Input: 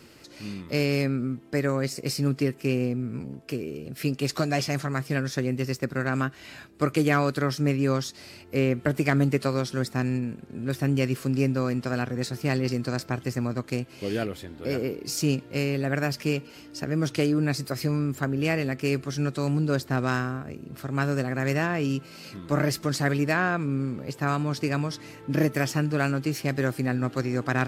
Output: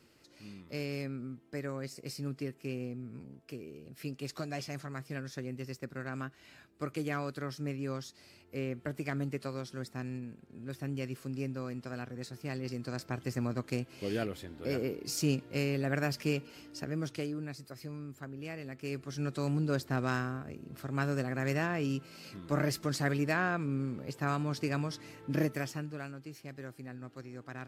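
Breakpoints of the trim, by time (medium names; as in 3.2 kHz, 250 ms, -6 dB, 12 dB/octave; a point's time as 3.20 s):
12.53 s -13 dB
13.43 s -5.5 dB
16.66 s -5.5 dB
17.55 s -17 dB
18.56 s -17 dB
19.37 s -6.5 dB
25.37 s -6.5 dB
26.13 s -19 dB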